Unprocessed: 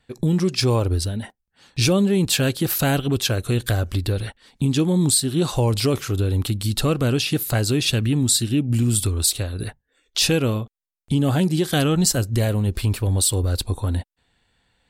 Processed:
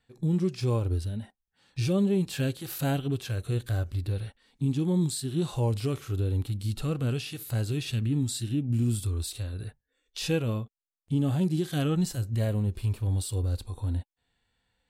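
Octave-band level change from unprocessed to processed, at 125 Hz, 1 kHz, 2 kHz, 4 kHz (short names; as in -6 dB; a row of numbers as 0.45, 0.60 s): -6.5, -11.0, -13.0, -15.0 dB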